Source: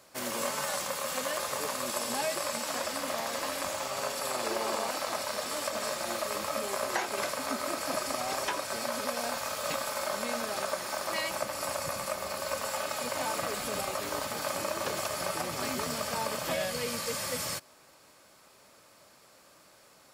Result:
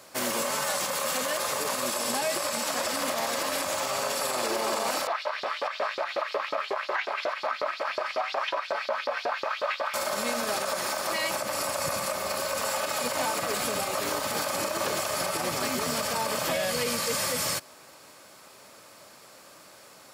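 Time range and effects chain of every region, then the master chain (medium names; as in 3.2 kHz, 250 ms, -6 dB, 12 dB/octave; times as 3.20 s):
5.07–9.94 s: distance through air 320 m + LFO high-pass saw up 5.5 Hz 400–5200 Hz
whole clip: high-pass 57 Hz; bass shelf 140 Hz -4 dB; peak limiter -26 dBFS; trim +7.5 dB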